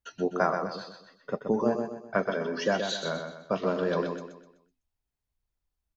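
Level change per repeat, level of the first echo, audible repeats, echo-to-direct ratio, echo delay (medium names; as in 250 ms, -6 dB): -8.0 dB, -6.5 dB, 4, -6.0 dB, 126 ms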